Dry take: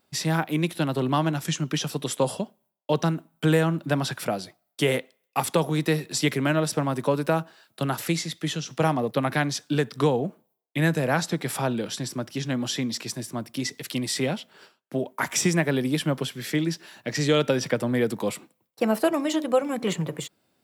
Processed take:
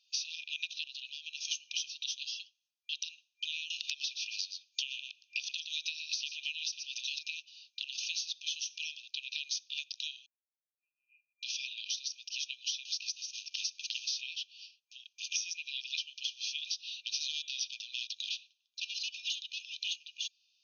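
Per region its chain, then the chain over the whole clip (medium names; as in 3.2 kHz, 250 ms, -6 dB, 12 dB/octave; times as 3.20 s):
0.83–1.51 s: high-pass 530 Hz + overload inside the chain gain 16.5 dB + compression, threshold -31 dBFS
3.70–7.19 s: delay 116 ms -12 dB + three bands compressed up and down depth 100%
10.26–11.43 s: slow attack 672 ms + rippled Chebyshev high-pass 1.5 kHz, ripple 3 dB + frequency inversion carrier 3.7 kHz
12.85–14.21 s: hum notches 60/120 Hz + companded quantiser 4-bit
16.67–19.94 s: peaking EQ 3.6 kHz +8 dB 0.51 oct + hard clipper -21.5 dBFS
whole clip: FFT band-pass 2.4–6.6 kHz; tilt EQ +2 dB/octave; compression 6:1, threshold -35 dBFS; trim +1.5 dB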